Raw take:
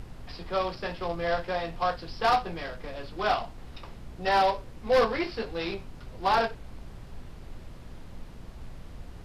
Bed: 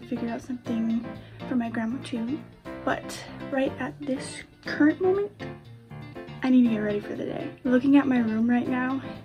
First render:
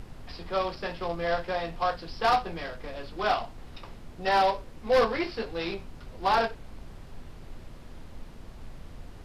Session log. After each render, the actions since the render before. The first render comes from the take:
hum removal 60 Hz, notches 3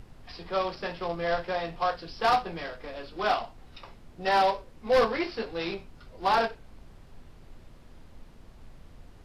noise reduction from a noise print 6 dB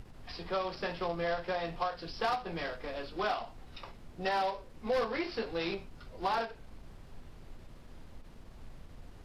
downward compressor 4 to 1, threshold −30 dBFS, peak gain reduction 9.5 dB
every ending faded ahead of time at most 200 dB per second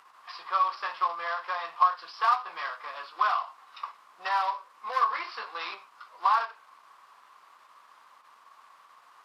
high-pass with resonance 1,100 Hz, resonance Q 7.2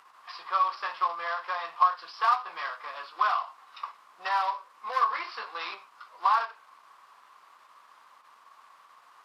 no processing that can be heard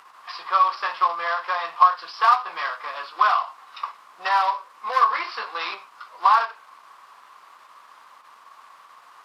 level +7 dB

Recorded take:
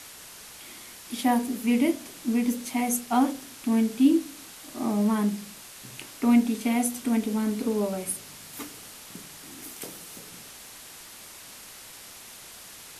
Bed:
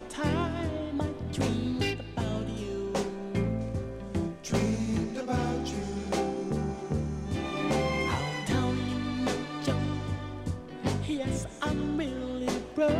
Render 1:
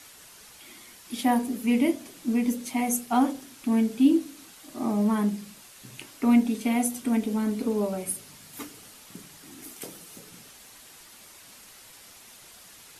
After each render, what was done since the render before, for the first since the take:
broadband denoise 6 dB, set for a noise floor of −46 dBFS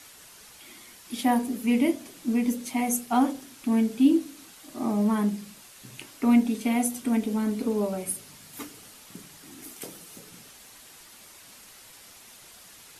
no processing that can be heard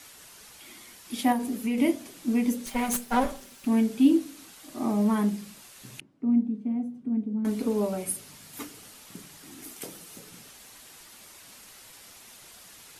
0:01.32–0:01.78: downward compressor, threshold −24 dBFS
0:02.66–0:03.66: lower of the sound and its delayed copy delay 5.1 ms
0:06.00–0:07.45: resonant band-pass 180 Hz, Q 1.9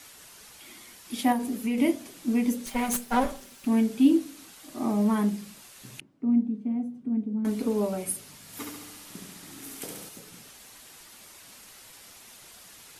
0:08.41–0:10.09: flutter between parallel walls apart 11.8 metres, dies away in 1.1 s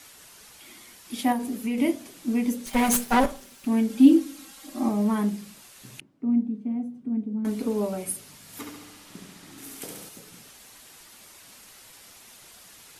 0:02.73–0:03.26: leveller curve on the samples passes 2
0:03.89–0:04.89: comb filter 3.7 ms, depth 84%
0:08.61–0:09.58: high-shelf EQ 7,300 Hz −8 dB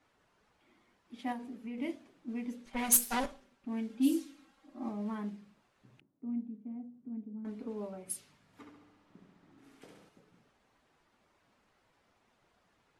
first-order pre-emphasis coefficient 0.8
low-pass that shuts in the quiet parts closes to 960 Hz, open at −23 dBFS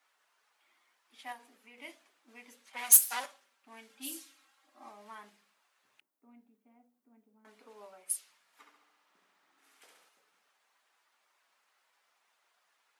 high-pass filter 930 Hz 12 dB per octave
high-shelf EQ 9,100 Hz +9.5 dB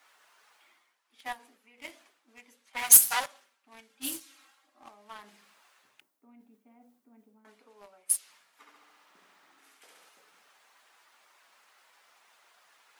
leveller curve on the samples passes 2
reversed playback
upward compression, threshold −49 dBFS
reversed playback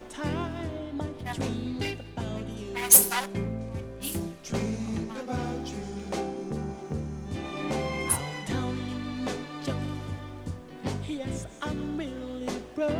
mix in bed −2.5 dB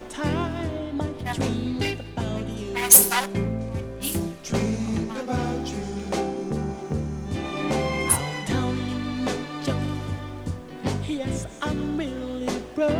level +5.5 dB
brickwall limiter −3 dBFS, peak gain reduction 2.5 dB

